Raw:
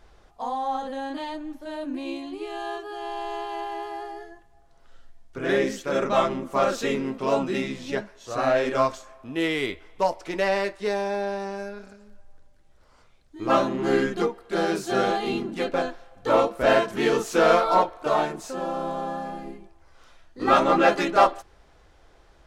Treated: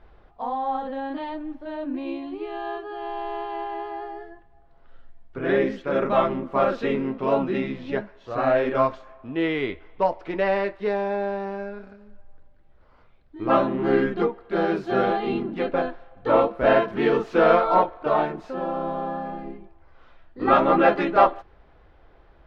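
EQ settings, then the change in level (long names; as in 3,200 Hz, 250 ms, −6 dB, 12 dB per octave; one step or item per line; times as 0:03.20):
high-frequency loss of the air 360 metres
+2.5 dB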